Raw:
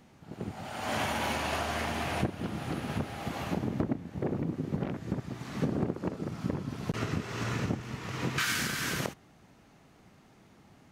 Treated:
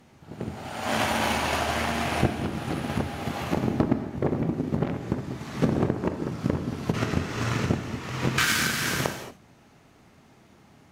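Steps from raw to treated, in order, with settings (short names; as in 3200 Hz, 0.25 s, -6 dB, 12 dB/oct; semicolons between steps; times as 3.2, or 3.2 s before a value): notches 50/100/150/200 Hz; added harmonics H 7 -24 dB, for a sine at -14.5 dBFS; non-linear reverb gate 0.26 s flat, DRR 7 dB; gain +8 dB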